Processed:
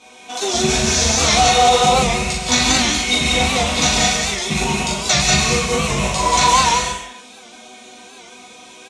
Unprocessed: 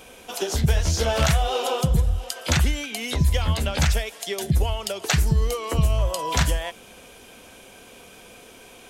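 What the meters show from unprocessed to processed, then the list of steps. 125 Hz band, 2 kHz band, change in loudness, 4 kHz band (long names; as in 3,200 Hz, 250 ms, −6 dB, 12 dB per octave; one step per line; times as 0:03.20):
−2.0 dB, +11.0 dB, +8.5 dB, +13.0 dB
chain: loose part that buzzes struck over −16 dBFS, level −17 dBFS
parametric band 4,200 Hz +10.5 dB 1.1 octaves
resonators tuned to a chord B3 major, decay 0.22 s
in parallel at −4 dB: bit-depth reduction 6 bits, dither none
on the sum: multi-voice chorus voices 6, 0.84 Hz, delay 17 ms, depth 3.9 ms
loudspeaker in its box 130–8,000 Hz, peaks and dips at 210 Hz +4 dB, 330 Hz −8 dB, 530 Hz −5 dB, 1,600 Hz −8 dB, 3,000 Hz −10 dB, 4,700 Hz −10 dB
double-tracking delay 40 ms −3 dB
on a send: loudspeakers that aren't time-aligned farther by 65 metres −4 dB, 96 metres −9 dB
on the sum: reverb whose tail is shaped and stops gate 210 ms rising, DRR 1.5 dB
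boost into a limiter +23.5 dB
wow of a warped record 78 rpm, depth 100 cents
level −2.5 dB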